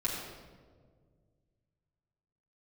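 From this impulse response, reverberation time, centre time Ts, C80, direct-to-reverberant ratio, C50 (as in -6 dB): 1.8 s, 69 ms, 3.0 dB, -5.0 dB, 1.5 dB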